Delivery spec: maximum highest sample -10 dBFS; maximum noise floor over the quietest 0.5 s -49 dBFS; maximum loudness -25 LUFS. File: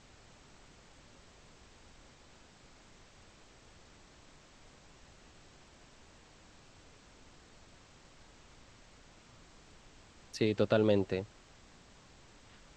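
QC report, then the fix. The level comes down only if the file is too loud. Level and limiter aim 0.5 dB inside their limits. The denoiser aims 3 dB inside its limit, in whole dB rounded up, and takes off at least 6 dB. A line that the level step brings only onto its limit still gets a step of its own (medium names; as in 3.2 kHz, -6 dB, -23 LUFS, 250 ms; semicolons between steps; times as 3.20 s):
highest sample -13.5 dBFS: pass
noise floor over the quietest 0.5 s -59 dBFS: pass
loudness -32.0 LUFS: pass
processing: none needed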